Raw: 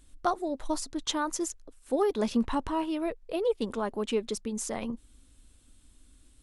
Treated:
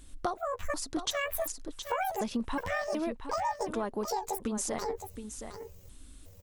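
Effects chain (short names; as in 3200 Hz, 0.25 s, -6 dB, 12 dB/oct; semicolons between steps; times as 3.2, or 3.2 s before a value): trilling pitch shifter +11 st, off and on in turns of 0.368 s; compressor, threshold -36 dBFS, peak gain reduction 13.5 dB; on a send: echo 0.718 s -9.5 dB; on the sum: gain +6 dB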